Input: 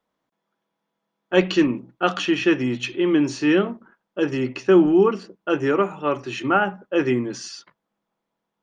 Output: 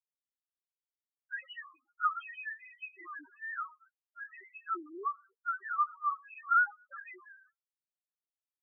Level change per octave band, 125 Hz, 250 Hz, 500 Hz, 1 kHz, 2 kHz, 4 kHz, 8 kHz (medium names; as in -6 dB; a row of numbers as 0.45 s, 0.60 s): under -40 dB, -37.0 dB, -36.0 dB, -6.5 dB, -8.0 dB, under -25 dB, no reading